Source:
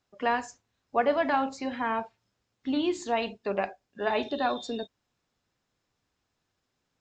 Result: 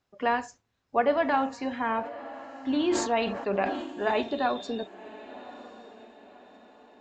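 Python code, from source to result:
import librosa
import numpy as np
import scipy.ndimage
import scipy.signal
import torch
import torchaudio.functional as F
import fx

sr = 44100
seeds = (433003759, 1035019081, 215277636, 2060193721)

y = fx.high_shelf(x, sr, hz=4900.0, db=-6.5)
y = fx.echo_diffused(y, sr, ms=1094, feedback_pct=41, wet_db=-16.0)
y = fx.sustainer(y, sr, db_per_s=51.0, at=(2.01, 4.21))
y = y * librosa.db_to_amplitude(1.0)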